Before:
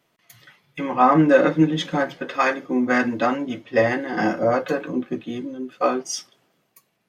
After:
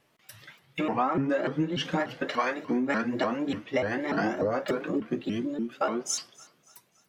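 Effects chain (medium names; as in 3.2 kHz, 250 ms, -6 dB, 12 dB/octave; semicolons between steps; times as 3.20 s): feedback echo behind a high-pass 284 ms, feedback 45%, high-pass 1.4 kHz, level -23 dB; on a send at -23.5 dB: reverberation RT60 0.55 s, pre-delay 3 ms; on the sum: compression 8:1, threshold -24 dBFS, peak gain reduction 14.5 dB; vibrato with a chosen wave saw up 3.4 Hz, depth 250 cents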